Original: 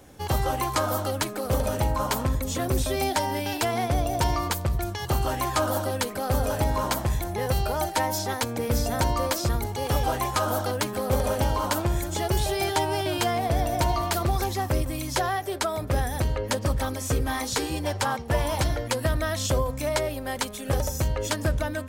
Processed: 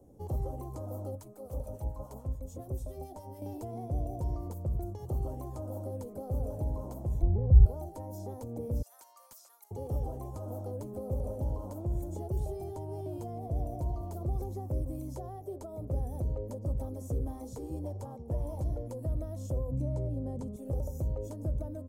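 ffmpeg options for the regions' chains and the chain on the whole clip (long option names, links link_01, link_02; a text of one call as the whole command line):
ffmpeg -i in.wav -filter_complex "[0:a]asettb=1/sr,asplit=3[link_01][link_02][link_03];[link_01]atrim=end=1.154[link_04];[link_02]atrim=start=1.15:end=3.42,asetpts=PTS-STARTPTS,afade=type=in:duration=0.004:curve=qsin,afade=type=out:start_time=2.266:duration=0.004:curve=qsin,equalizer=frequency=280:width_type=o:width=2.1:gain=-8.5,acrossover=split=980[link_05][link_06];[link_05]aeval=exprs='val(0)*(1-0.7/2+0.7/2*cos(2*PI*7*n/s))':channel_layout=same[link_07];[link_06]aeval=exprs='val(0)*(1-0.7/2-0.7/2*cos(2*PI*7*n/s))':channel_layout=same[link_08];[link_07][link_08]amix=inputs=2:normalize=0[link_09];[link_03]atrim=start=3.416[link_10];[link_04][link_09]acrossfade=duration=0.004:curve1=hsin:curve2=qsin[link_11];[link_11][link_10]acrossfade=duration=0.004:curve1=qsin:curve2=hsin,asettb=1/sr,asplit=3[link_12][link_13][link_14];[link_12]atrim=end=7.224[link_15];[link_13]atrim=start=7.22:end=7.66,asetpts=PTS-STARTPTS,afade=type=in:duration=0.004:curve=qsin,afade=type=out:start_time=0.436:duration=0.004:curve=qsin,lowpass=4500,aemphasis=mode=reproduction:type=riaa[link_16];[link_14]atrim=start=7.656[link_17];[link_15][link_16]acrossfade=duration=0.004:curve1=hsin:curve2=qsin[link_18];[link_18][link_17]acrossfade=duration=0.004:curve1=qsin:curve2=hsin,asettb=1/sr,asplit=3[link_19][link_20][link_21];[link_19]atrim=end=8.824[link_22];[link_20]atrim=start=8.82:end=9.71,asetpts=PTS-STARTPTS,afade=type=in:duration=0.004:curve=qsin,afade=type=out:start_time=0.886:duration=0.004:curve=qsin,highpass=frequency=1300:width=0.5412,highpass=frequency=1300:width=1.3066,asoftclip=type=hard:threshold=-21.5dB[link_23];[link_21]atrim=start=9.706[link_24];[link_22][link_23]acrossfade=duration=0.004:curve1=hsin:curve2=qsin[link_25];[link_25][link_24]acrossfade=duration=0.004:curve1=qsin:curve2=hsin,asettb=1/sr,asplit=3[link_26][link_27][link_28];[link_26]atrim=end=19.714[link_29];[link_27]atrim=start=19.71:end=20.56,asetpts=PTS-STARTPTS,afade=type=in:duration=0.004:curve=qsin,afade=type=out:start_time=0.846:duration=0.004:curve=qsin,lowpass=8900,equalizer=frequency=150:width=0.63:gain=14[link_30];[link_28]atrim=start=20.556[link_31];[link_29][link_30]acrossfade=duration=0.004:curve1=hsin:curve2=qsin[link_32];[link_32][link_31]acrossfade=duration=0.004:curve1=qsin:curve2=hsin,highshelf=frequency=9600:gain=-8,acrossover=split=130[link_33][link_34];[link_34]acompressor=threshold=-29dB:ratio=6[link_35];[link_33][link_35]amix=inputs=2:normalize=0,firequalizer=gain_entry='entry(510,0);entry(1600,-29);entry(4000,-25);entry(6500,-13);entry(13000,-5)':delay=0.05:min_phase=1,volume=-6dB" out.wav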